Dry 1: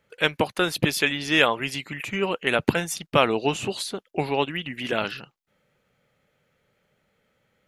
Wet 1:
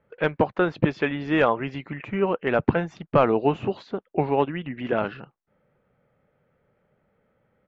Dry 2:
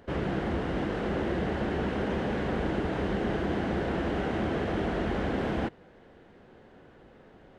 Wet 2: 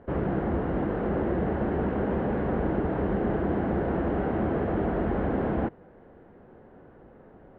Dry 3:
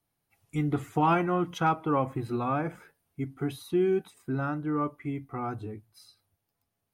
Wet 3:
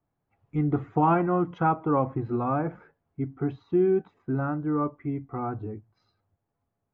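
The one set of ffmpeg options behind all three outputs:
-af "aresample=16000,volume=3.55,asoftclip=hard,volume=0.282,aresample=44100,lowpass=1300,volume=1.41"

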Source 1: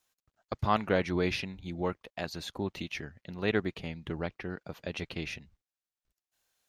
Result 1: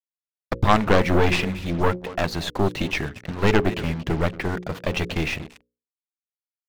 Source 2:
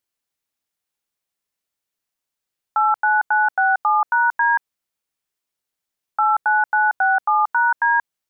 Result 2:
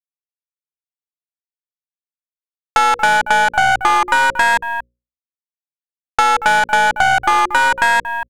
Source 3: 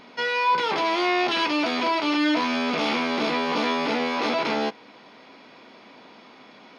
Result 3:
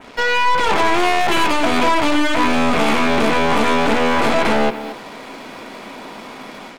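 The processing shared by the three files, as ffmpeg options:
-filter_complex "[0:a]dynaudnorm=f=370:g=3:m=1.78,asplit=2[s0][s1];[s1]aecho=0:1:231:0.119[s2];[s0][s2]amix=inputs=2:normalize=0,aeval=exprs='0.596*(cos(1*acos(clip(val(0)/0.596,-1,1)))-cos(1*PI/2))+0.188*(cos(2*acos(clip(val(0)/0.596,-1,1)))-cos(2*PI/2))+0.0668*(cos(3*acos(clip(val(0)/0.596,-1,1)))-cos(3*PI/2))+0.0668*(cos(5*acos(clip(val(0)/0.596,-1,1)))-cos(5*PI/2))+0.133*(cos(8*acos(clip(val(0)/0.596,-1,1)))-cos(8*PI/2))':c=same,acrusher=bits=6:mix=0:aa=0.5,highshelf=f=3700:g=-8.5,aeval=exprs='0.708*(cos(1*acos(clip(val(0)/0.708,-1,1)))-cos(1*PI/2))+0.0708*(cos(5*acos(clip(val(0)/0.708,-1,1)))-cos(5*PI/2))+0.0355*(cos(6*acos(clip(val(0)/0.708,-1,1)))-cos(6*PI/2))':c=same,acompressor=threshold=0.178:ratio=6,adynamicequalizer=threshold=0.00631:dfrequency=5000:dqfactor=1.5:tfrequency=5000:tqfactor=1.5:attack=5:release=100:ratio=0.375:range=2.5:mode=cutabove:tftype=bell,bandreject=f=60:t=h:w=6,bandreject=f=120:t=h:w=6,bandreject=f=180:t=h:w=6,bandreject=f=240:t=h:w=6,bandreject=f=300:t=h:w=6,bandreject=f=360:t=h:w=6,bandreject=f=420:t=h:w=6,bandreject=f=480:t=h:w=6,bandreject=f=540:t=h:w=6,volume=1.78"

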